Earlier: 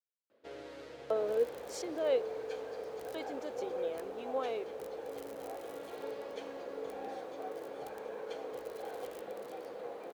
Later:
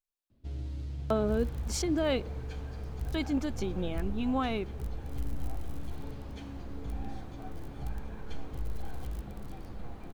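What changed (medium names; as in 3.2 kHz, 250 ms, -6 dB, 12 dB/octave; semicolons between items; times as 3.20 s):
speech +10.0 dB; first sound: add peaking EQ 1.6 kHz -11 dB 1.5 oct; master: remove resonant high-pass 490 Hz, resonance Q 5.2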